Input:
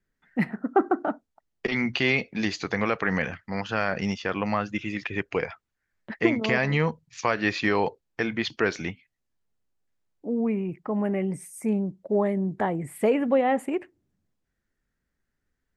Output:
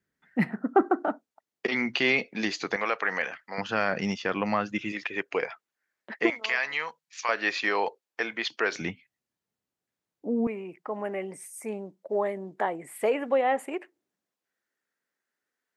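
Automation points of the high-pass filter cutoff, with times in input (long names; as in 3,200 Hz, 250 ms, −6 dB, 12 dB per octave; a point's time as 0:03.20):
97 Hz
from 0:00.83 250 Hz
from 0:02.76 540 Hz
from 0:03.58 160 Hz
from 0:04.92 350 Hz
from 0:06.30 1,100 Hz
from 0:07.29 500 Hz
from 0:08.72 130 Hz
from 0:10.47 460 Hz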